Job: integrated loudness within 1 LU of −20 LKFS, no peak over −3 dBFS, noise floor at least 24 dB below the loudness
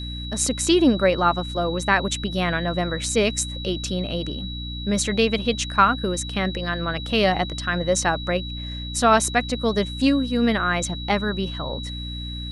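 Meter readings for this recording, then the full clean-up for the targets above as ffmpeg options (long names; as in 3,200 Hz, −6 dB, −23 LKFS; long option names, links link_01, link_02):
mains hum 60 Hz; hum harmonics up to 300 Hz; level of the hum −30 dBFS; interfering tone 3,900 Hz; level of the tone −34 dBFS; integrated loudness −22.5 LKFS; sample peak −3.0 dBFS; target loudness −20.0 LKFS
→ -af "bandreject=frequency=60:width_type=h:width=6,bandreject=frequency=120:width_type=h:width=6,bandreject=frequency=180:width_type=h:width=6,bandreject=frequency=240:width_type=h:width=6,bandreject=frequency=300:width_type=h:width=6"
-af "bandreject=frequency=3900:width=30"
-af "volume=2.5dB,alimiter=limit=-3dB:level=0:latency=1"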